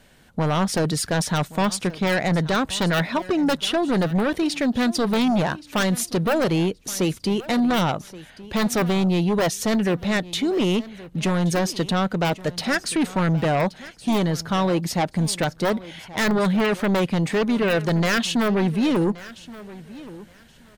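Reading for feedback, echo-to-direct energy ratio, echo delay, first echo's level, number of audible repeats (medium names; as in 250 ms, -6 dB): 20%, -18.5 dB, 1125 ms, -18.5 dB, 2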